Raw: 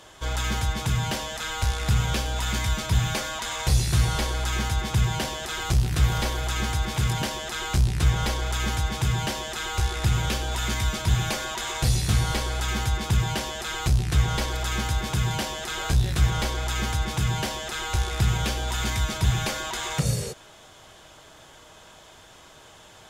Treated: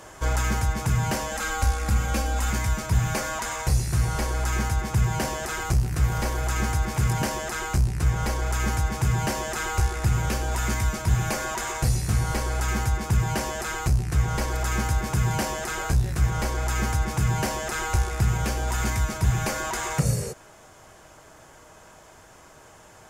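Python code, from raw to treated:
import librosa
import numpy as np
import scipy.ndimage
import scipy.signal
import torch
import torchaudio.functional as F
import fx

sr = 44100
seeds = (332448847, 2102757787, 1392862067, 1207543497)

y = fx.comb(x, sr, ms=3.7, depth=0.65, at=(1.31, 2.5))
y = fx.peak_eq(y, sr, hz=3500.0, db=-13.0, octaves=0.67)
y = fx.rider(y, sr, range_db=10, speed_s=0.5)
y = F.gain(torch.from_numpy(y), 1.0).numpy()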